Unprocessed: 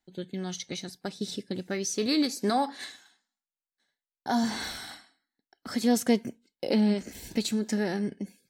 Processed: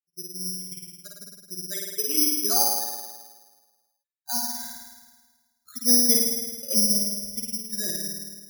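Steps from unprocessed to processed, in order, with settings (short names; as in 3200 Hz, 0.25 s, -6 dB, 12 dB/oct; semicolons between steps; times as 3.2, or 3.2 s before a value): per-bin expansion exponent 3; flutter echo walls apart 9.2 m, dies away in 1.4 s; careless resampling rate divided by 8×, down filtered, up zero stuff; gain -3 dB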